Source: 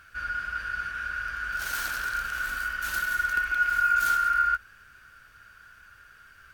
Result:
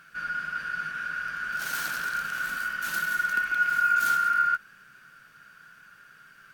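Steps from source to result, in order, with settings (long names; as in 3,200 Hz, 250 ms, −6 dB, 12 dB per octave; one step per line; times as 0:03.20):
low shelf with overshoot 110 Hz −13 dB, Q 3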